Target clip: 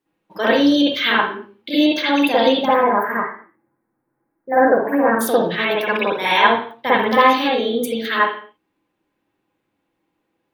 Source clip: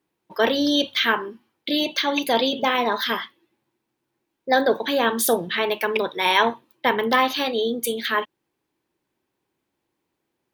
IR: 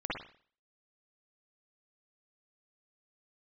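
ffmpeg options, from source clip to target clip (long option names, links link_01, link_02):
-filter_complex "[0:a]asplit=3[link_01][link_02][link_03];[link_01]afade=type=out:start_time=2.65:duration=0.02[link_04];[link_02]asuperstop=centerf=4200:order=8:qfactor=0.62,afade=type=in:start_time=2.65:duration=0.02,afade=type=out:start_time=5.2:duration=0.02[link_05];[link_03]afade=type=in:start_time=5.2:duration=0.02[link_06];[link_04][link_05][link_06]amix=inputs=3:normalize=0[link_07];[1:a]atrim=start_sample=2205,afade=type=out:start_time=0.38:duration=0.01,atrim=end_sample=17199[link_08];[link_07][link_08]afir=irnorm=-1:irlink=0"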